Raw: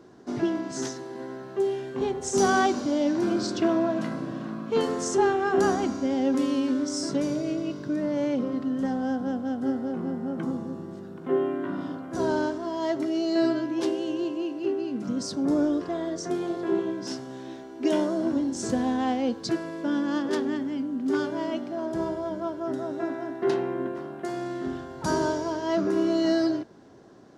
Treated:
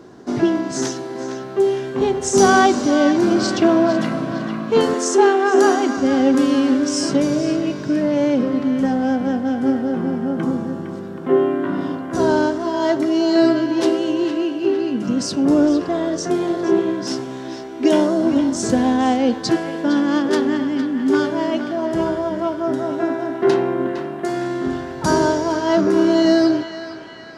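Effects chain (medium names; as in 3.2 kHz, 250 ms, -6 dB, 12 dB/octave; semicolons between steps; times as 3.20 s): 4.94–5.97 s: Chebyshev high-pass 240 Hz, order 5; on a send: band-passed feedback delay 459 ms, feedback 67%, band-pass 2 kHz, level -8 dB; on the sum: trim +9 dB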